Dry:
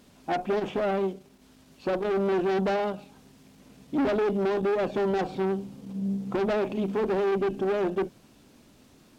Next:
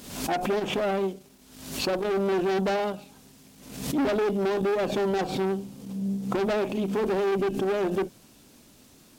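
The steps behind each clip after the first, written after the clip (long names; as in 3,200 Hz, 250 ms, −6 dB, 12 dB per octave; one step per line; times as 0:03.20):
high-shelf EQ 4,900 Hz +10.5 dB
background raised ahead of every attack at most 72 dB per second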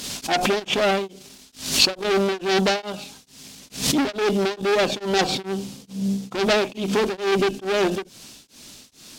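parametric band 4,700 Hz +12.5 dB 2.5 octaves
tremolo along a rectified sine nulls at 2.3 Hz
level +5.5 dB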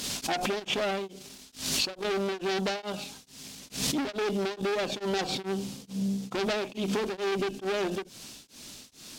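downward compressor 4 to 1, threshold −25 dBFS, peak gain reduction 11.5 dB
level −2 dB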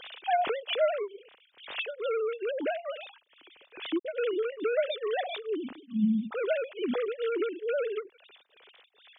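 three sine waves on the formant tracks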